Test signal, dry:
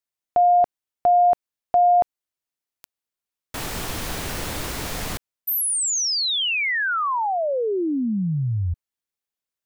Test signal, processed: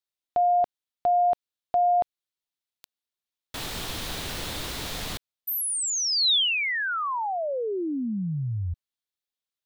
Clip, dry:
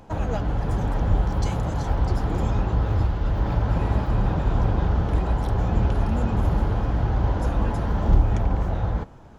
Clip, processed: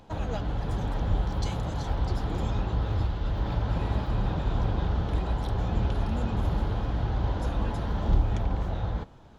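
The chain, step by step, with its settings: bell 3700 Hz +8 dB 0.75 oct; gain -5.5 dB

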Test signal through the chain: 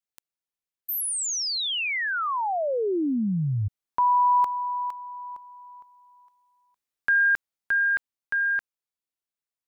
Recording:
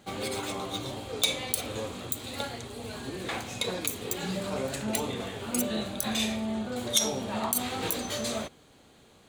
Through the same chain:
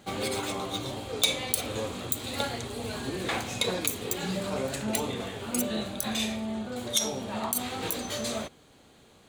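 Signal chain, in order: vocal rider 2 s

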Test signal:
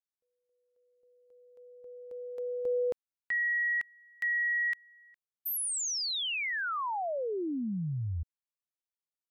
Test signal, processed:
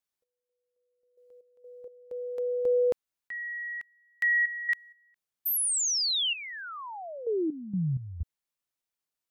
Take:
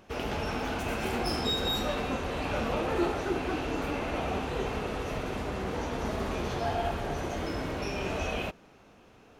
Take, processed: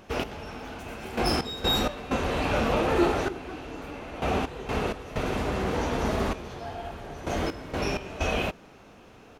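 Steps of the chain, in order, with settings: step gate "x....x.x.xxxx" 64 bpm -12 dB; gain +5.5 dB

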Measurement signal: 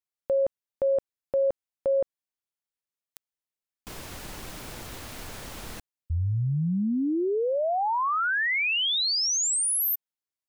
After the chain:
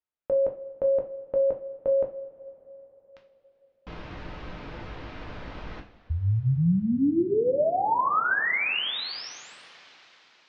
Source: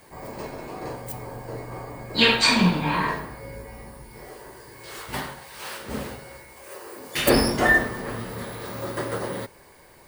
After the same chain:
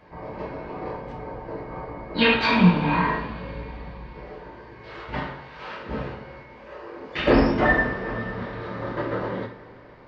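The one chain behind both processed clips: Gaussian blur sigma 2.6 samples; two-slope reverb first 0.35 s, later 4.5 s, from -22 dB, DRR 1.5 dB

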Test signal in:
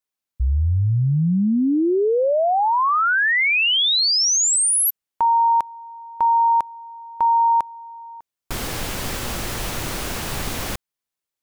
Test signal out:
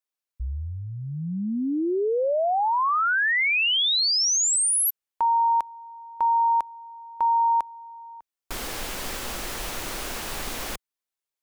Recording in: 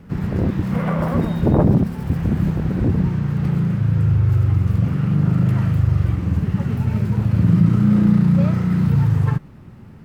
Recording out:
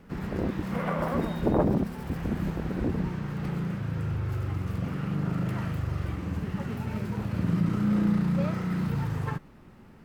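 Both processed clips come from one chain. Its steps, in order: bell 110 Hz -11.5 dB 1.7 oct; gain -4 dB

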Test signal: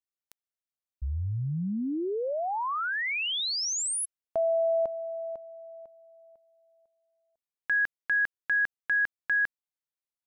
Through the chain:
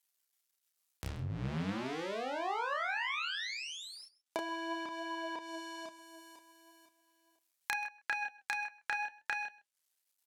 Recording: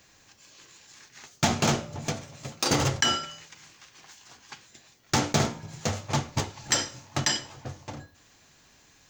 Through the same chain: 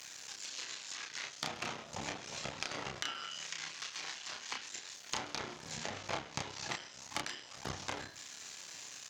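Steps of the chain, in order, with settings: cycle switcher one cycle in 2, muted; HPF 67 Hz; in parallel at -1 dB: level quantiser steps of 14 dB; on the sum: tilt +3 dB/oct; compressor 10:1, threshold -37 dBFS; treble ducked by the level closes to 2900 Hz, closed at -38.5 dBFS; flange 0.39 Hz, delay 0.9 ms, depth 6.5 ms, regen +73%; doubler 31 ms -3.5 dB; echo 0.131 s -21 dB; gain +8 dB

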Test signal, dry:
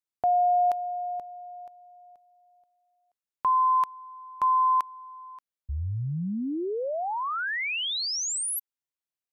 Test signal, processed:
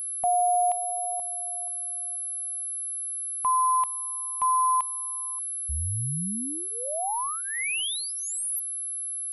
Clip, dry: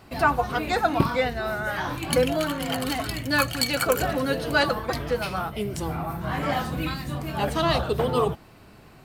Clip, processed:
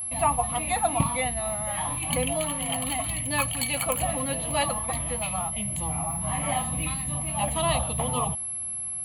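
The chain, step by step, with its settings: whine 11000 Hz -28 dBFS; fixed phaser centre 1500 Hz, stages 6

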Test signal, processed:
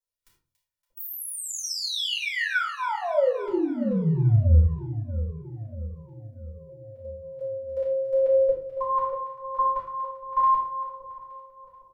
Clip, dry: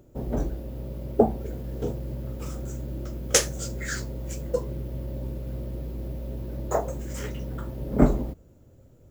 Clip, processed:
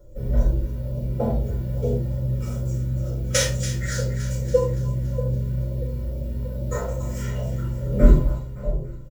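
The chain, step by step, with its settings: notch 820 Hz, Q 20; de-hum 47.28 Hz, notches 3; dynamic EQ 3000 Hz, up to +5 dB, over -41 dBFS, Q 0.73; comb 2.1 ms, depth 39%; split-band echo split 810 Hz, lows 0.636 s, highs 0.283 s, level -12 dB; LFO notch saw down 2.3 Hz 220–2600 Hz; shoebox room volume 170 m³, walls furnished, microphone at 5.8 m; harmonic-percussive split percussive -12 dB; gain -6 dB

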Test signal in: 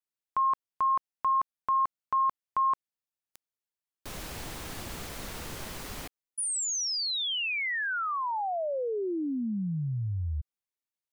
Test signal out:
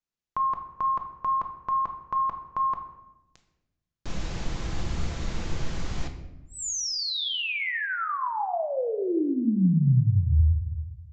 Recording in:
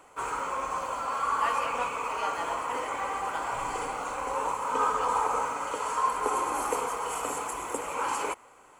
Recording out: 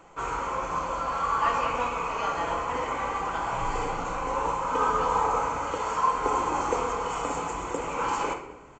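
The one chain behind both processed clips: low shelf 220 Hz +11.5 dB; shoebox room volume 360 m³, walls mixed, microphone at 0.74 m; downsampling 16000 Hz

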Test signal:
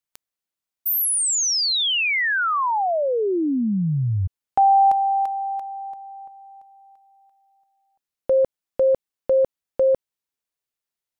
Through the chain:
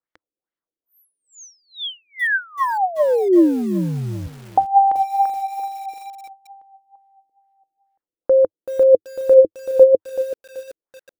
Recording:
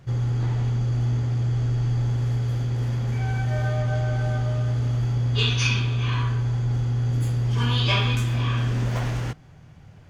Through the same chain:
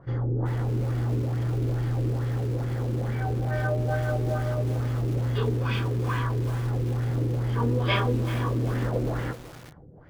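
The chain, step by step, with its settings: thirty-one-band EQ 100 Hz -7 dB, 315 Hz +8 dB, 500 Hz +7 dB, 2500 Hz -12 dB, 5000 Hz +4 dB; LFO low-pass sine 2.3 Hz 360–2500 Hz; lo-fi delay 0.381 s, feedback 35%, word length 5-bit, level -12.5 dB; gain -2 dB

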